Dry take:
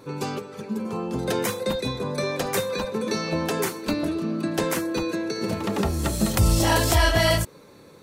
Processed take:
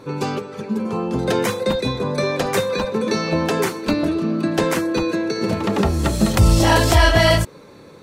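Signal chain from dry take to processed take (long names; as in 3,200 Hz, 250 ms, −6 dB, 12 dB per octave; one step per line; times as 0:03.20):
high-shelf EQ 8,300 Hz −11 dB
level +6 dB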